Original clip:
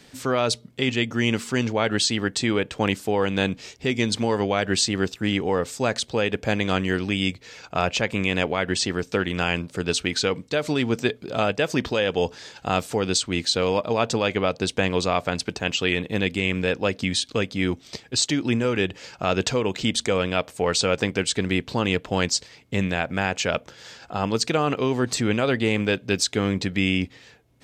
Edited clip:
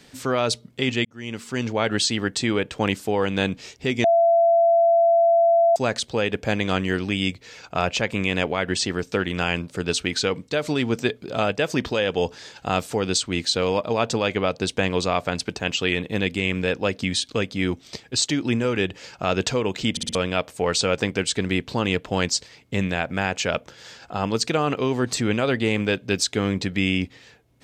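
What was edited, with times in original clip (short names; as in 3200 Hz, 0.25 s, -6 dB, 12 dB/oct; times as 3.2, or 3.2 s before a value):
1.05–1.8 fade in
4.04–5.76 bleep 675 Hz -13.5 dBFS
19.91 stutter in place 0.06 s, 4 plays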